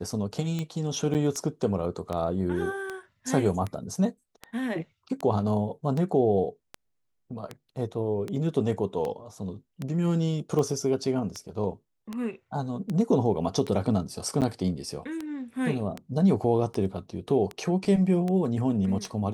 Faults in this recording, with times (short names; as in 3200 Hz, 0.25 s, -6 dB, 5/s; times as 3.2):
tick 78 rpm -19 dBFS
1.14–1.15 gap 8.2 ms
14.41–14.42 gap 8.6 ms